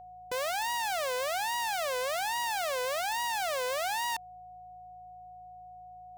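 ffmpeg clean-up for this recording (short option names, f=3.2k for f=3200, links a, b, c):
-af "bandreject=f=54.8:t=h:w=4,bandreject=f=109.6:t=h:w=4,bandreject=f=164.4:t=h:w=4,bandreject=f=730:w=30"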